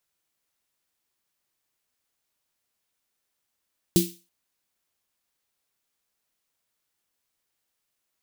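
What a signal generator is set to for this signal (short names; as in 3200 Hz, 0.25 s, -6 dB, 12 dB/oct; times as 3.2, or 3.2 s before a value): snare drum length 0.33 s, tones 180 Hz, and 340 Hz, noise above 2800 Hz, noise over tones -6.5 dB, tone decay 0.27 s, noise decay 0.35 s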